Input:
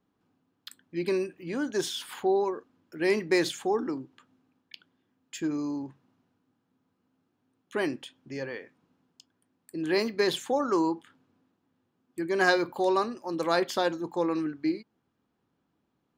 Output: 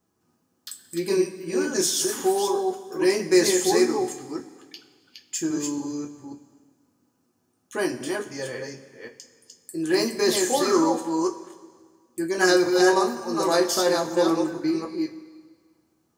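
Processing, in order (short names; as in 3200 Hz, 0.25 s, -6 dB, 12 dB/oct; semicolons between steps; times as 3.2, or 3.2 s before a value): reverse delay 0.275 s, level -3 dB; resonant high shelf 4600 Hz +9.5 dB, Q 1.5; two-slope reverb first 0.2 s, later 1.7 s, from -18 dB, DRR -0.5 dB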